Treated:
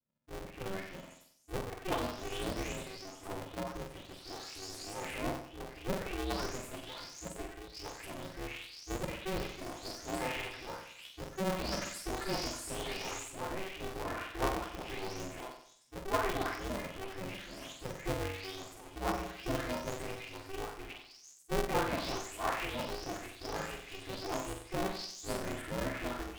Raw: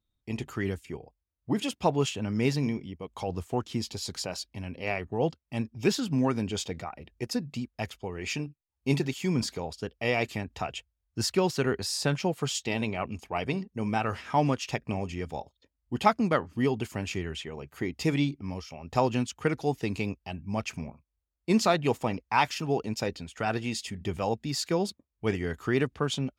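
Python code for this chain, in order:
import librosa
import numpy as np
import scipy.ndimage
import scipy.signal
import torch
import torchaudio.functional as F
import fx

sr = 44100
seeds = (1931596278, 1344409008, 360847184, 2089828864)

y = fx.spec_delay(x, sr, highs='late', ms=722)
y = fx.room_flutter(y, sr, wall_m=7.9, rt60_s=0.61)
y = y * np.sign(np.sin(2.0 * np.pi * 190.0 * np.arange(len(y)) / sr))
y = y * 10.0 ** (-8.0 / 20.0)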